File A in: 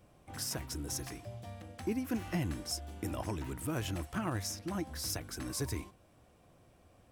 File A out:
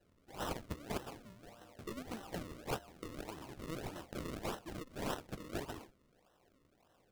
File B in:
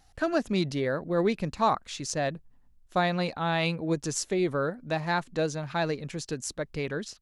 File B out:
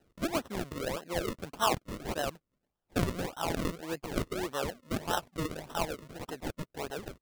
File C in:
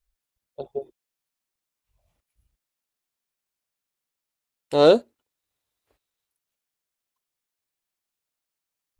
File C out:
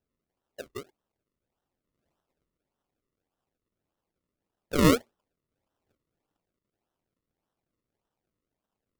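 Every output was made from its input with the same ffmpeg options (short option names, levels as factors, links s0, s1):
-af "highpass=f=960:p=1,acrusher=samples=38:mix=1:aa=0.000001:lfo=1:lforange=38:lforate=1.7"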